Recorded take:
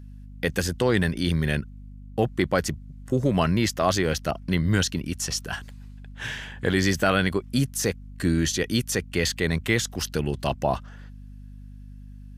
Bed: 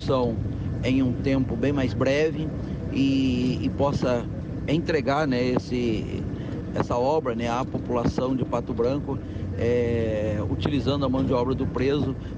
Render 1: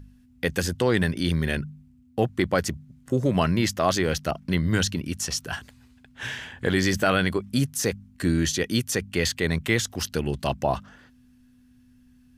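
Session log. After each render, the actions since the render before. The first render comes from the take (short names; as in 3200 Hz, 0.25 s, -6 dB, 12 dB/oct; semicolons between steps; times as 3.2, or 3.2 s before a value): de-hum 50 Hz, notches 4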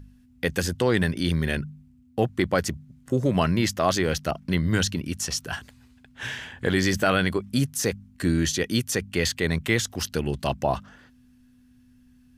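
nothing audible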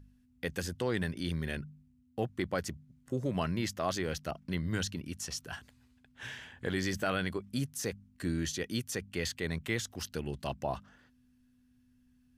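gain -10.5 dB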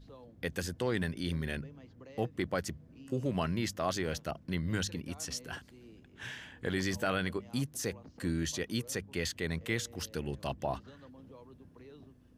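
add bed -30 dB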